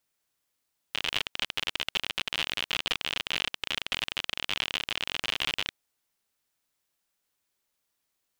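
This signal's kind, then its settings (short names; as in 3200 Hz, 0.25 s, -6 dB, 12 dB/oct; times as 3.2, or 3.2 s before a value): random clicks 57/s -12.5 dBFS 4.79 s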